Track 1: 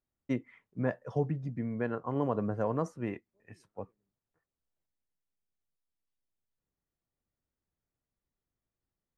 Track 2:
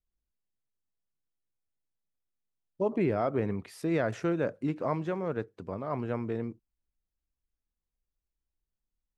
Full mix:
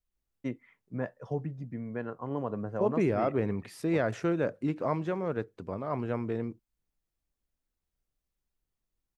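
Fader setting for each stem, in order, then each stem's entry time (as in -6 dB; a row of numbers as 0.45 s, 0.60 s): -3.0 dB, +0.5 dB; 0.15 s, 0.00 s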